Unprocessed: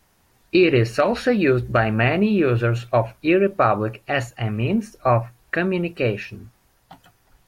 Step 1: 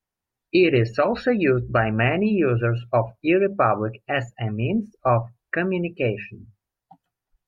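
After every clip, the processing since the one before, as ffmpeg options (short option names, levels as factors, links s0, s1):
-af "bandreject=f=50:t=h:w=6,bandreject=f=100:t=h:w=6,bandreject=f=150:t=h:w=6,bandreject=f=200:t=h:w=6,afftdn=nr=24:nf=-33,volume=0.841"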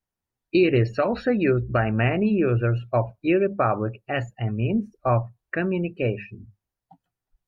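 -af "lowshelf=f=380:g=5,volume=0.631"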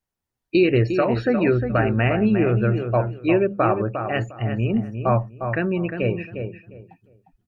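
-filter_complex "[0:a]asplit=2[s0][s1];[s1]adelay=354,lowpass=f=2100:p=1,volume=0.447,asplit=2[s2][s3];[s3]adelay=354,lowpass=f=2100:p=1,volume=0.22,asplit=2[s4][s5];[s5]adelay=354,lowpass=f=2100:p=1,volume=0.22[s6];[s0][s2][s4][s6]amix=inputs=4:normalize=0,volume=1.19"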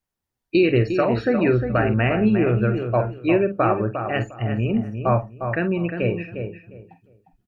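-filter_complex "[0:a]asplit=2[s0][s1];[s1]adelay=47,volume=0.282[s2];[s0][s2]amix=inputs=2:normalize=0"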